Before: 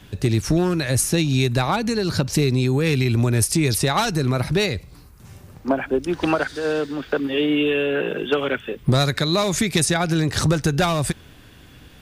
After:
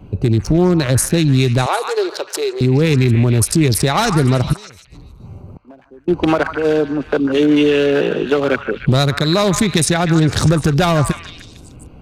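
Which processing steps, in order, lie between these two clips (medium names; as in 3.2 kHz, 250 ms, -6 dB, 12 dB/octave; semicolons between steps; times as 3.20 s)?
local Wiener filter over 25 samples; peak limiter -14 dBFS, peak gain reduction 5 dB; 1.66–2.61 s: elliptic high-pass 370 Hz, stop band 40 dB; 4.53–6.08 s: inverted gate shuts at -33 dBFS, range -26 dB; repeats whose band climbs or falls 150 ms, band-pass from 1.3 kHz, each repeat 0.7 oct, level -5 dB; trim +8.5 dB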